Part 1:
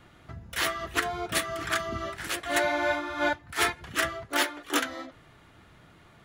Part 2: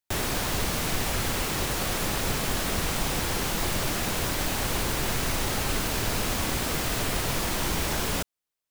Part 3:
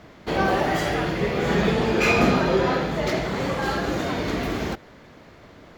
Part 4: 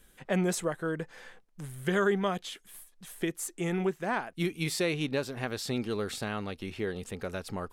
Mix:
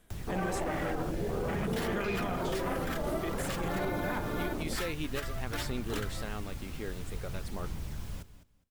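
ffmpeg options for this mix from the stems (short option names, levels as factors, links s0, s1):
-filter_complex "[0:a]alimiter=limit=0.0841:level=0:latency=1:release=427,acrusher=samples=3:mix=1:aa=0.000001,adelay=1200,volume=0.596[s0];[1:a]acrossover=split=190[s1][s2];[s2]acompressor=threshold=0.00447:ratio=3[s3];[s1][s3]amix=inputs=2:normalize=0,volume=0.398,asplit=2[s4][s5];[s5]volume=0.2[s6];[2:a]afwtdn=0.0501,alimiter=limit=0.168:level=0:latency=1:release=18,volume=0.355[s7];[3:a]volume=0.473[s8];[s6]aecho=0:1:206|412|618:1|0.19|0.0361[s9];[s0][s4][s7][s8][s9]amix=inputs=5:normalize=0,aphaser=in_gain=1:out_gain=1:delay=3.8:decay=0.23:speed=0.52:type=sinusoidal,alimiter=limit=0.0668:level=0:latency=1:release=71"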